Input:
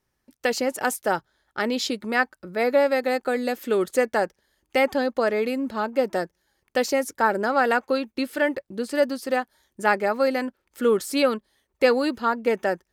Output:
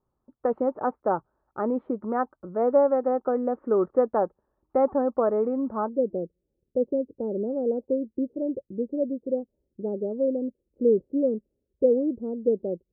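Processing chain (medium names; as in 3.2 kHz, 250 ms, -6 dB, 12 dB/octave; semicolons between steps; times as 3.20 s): elliptic low-pass 1.2 kHz, stop band 80 dB, from 5.88 s 510 Hz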